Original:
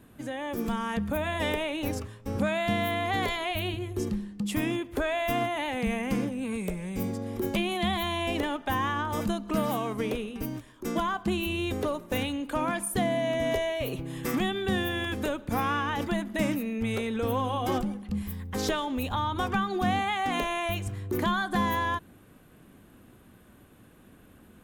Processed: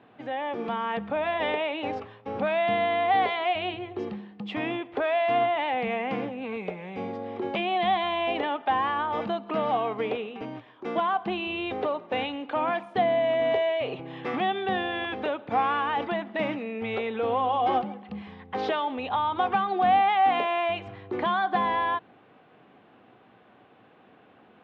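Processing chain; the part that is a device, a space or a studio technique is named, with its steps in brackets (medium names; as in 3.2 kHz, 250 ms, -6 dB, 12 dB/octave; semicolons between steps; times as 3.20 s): bass shelf 130 Hz -6 dB; overdrive pedal into a guitar cabinet (overdrive pedal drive 10 dB, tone 3.8 kHz, clips at -15.5 dBFS; cabinet simulation 110–3500 Hz, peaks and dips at 120 Hz +5 dB, 450 Hz +4 dB, 760 Hz +9 dB, 1.6 kHz -3 dB); trim -1.5 dB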